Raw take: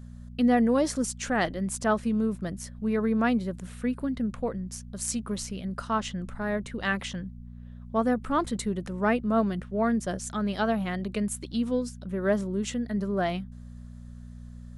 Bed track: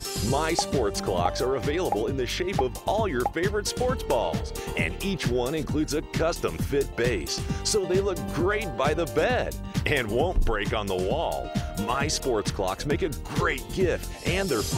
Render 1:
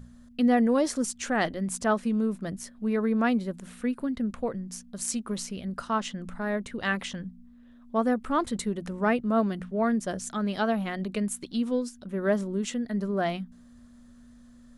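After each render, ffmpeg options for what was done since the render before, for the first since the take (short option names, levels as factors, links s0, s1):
-af "bandreject=f=60:t=h:w=4,bandreject=f=120:t=h:w=4,bandreject=f=180:t=h:w=4"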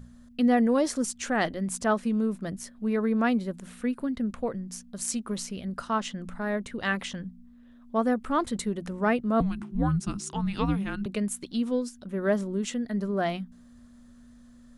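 -filter_complex "[0:a]asettb=1/sr,asplit=3[s0][s1][s2];[s0]atrim=end=9.404[s3];[s1]atrim=start=9.4:end=11.06,asetpts=PTS-STARTPTS,afade=t=in:d=0.004:c=qsin,afade=t=out:st=1.656:d=0.004:c=qsin,afreqshift=-390[s4];[s2]atrim=start=11.056[s5];[s3][s4]acrossfade=d=0.004:c1=hsin:c2=qsin[s6];[s6][s5]acrossfade=d=0.004:c1=qsin:c2=hsin"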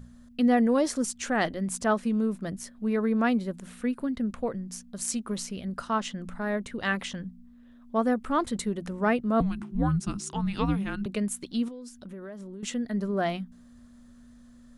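-filter_complex "[0:a]asettb=1/sr,asplit=3[s0][s1][s2];[s0]atrim=end=11.684[s3];[s1]atrim=start=11.68:end=12.63,asetpts=PTS-STARTPTS,afade=t=in:d=0.004:c=qsin,afade=t=out:st=0.946:d=0.004:c=qsin,acompressor=threshold=0.0126:ratio=8:attack=3.2:release=140:knee=1:detection=peak[s4];[s2]atrim=start=12.626[s5];[s3][s4]acrossfade=d=0.004:c1=hsin:c2=qsin[s6];[s6][s5]acrossfade=d=0.004:c1=qsin:c2=hsin"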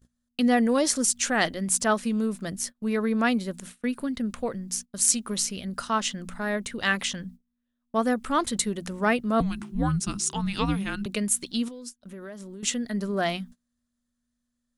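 -af "agate=range=0.0398:threshold=0.00708:ratio=16:detection=peak,highshelf=f=2300:g=11.5"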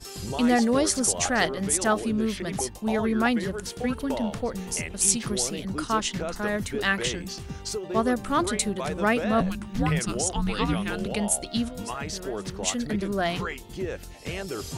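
-filter_complex "[1:a]volume=0.422[s0];[0:a][s0]amix=inputs=2:normalize=0"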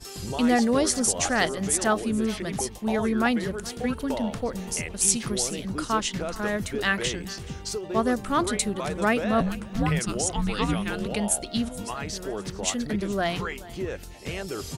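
-af "aecho=1:1:427:0.1"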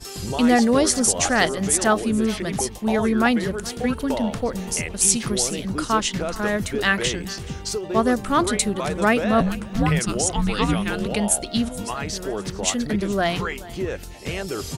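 -af "volume=1.68,alimiter=limit=0.891:level=0:latency=1"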